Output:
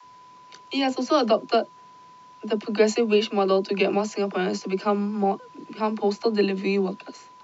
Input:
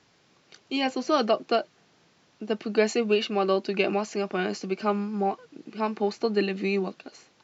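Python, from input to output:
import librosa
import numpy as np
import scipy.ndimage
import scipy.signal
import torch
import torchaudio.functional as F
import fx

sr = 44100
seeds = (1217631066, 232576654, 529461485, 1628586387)

y = x + 10.0 ** (-50.0 / 20.0) * np.sin(2.0 * np.pi * 1000.0 * np.arange(len(x)) / sr)
y = fx.dispersion(y, sr, late='lows', ms=48.0, hz=330.0)
y = fx.dynamic_eq(y, sr, hz=1900.0, q=1.1, threshold_db=-42.0, ratio=4.0, max_db=-4)
y = F.gain(torch.from_numpy(y), 3.5).numpy()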